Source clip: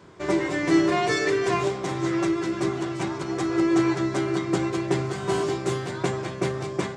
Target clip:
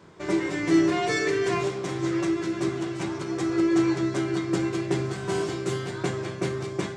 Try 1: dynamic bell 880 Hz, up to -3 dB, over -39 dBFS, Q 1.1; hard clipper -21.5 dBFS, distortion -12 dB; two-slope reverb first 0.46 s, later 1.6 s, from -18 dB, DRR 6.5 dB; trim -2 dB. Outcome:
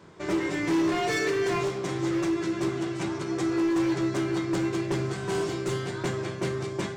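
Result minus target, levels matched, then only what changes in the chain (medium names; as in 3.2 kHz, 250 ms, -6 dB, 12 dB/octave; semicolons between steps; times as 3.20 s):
hard clipper: distortion +30 dB
change: hard clipper -11.5 dBFS, distortion -42 dB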